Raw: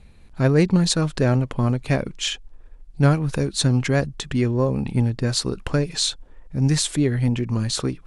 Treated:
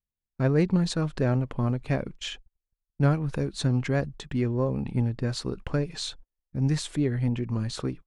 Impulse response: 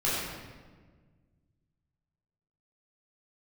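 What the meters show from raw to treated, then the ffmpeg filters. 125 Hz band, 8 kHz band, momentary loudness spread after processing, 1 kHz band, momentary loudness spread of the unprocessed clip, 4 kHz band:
−5.5 dB, −13.5 dB, 8 LU, −6.0 dB, 6 LU, −10.5 dB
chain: -af "agate=range=-40dB:threshold=-33dB:ratio=16:detection=peak,highshelf=frequency=4000:gain=-10.5,volume=-5.5dB"

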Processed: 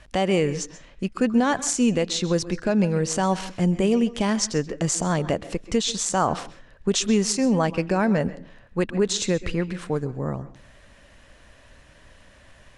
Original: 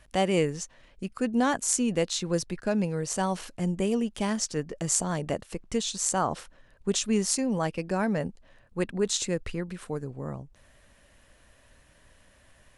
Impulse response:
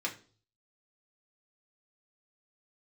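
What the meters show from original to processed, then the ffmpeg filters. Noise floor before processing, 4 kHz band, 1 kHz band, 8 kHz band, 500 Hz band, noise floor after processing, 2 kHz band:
−60 dBFS, +5.0 dB, +5.0 dB, +2.0 dB, +5.5 dB, −52 dBFS, +5.0 dB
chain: -filter_complex "[0:a]lowpass=6900,alimiter=limit=-18.5dB:level=0:latency=1:release=111,asplit=2[link_01][link_02];[1:a]atrim=start_sample=2205,adelay=129[link_03];[link_02][link_03]afir=irnorm=-1:irlink=0,volume=-18.5dB[link_04];[link_01][link_04]amix=inputs=2:normalize=0,volume=7.5dB"

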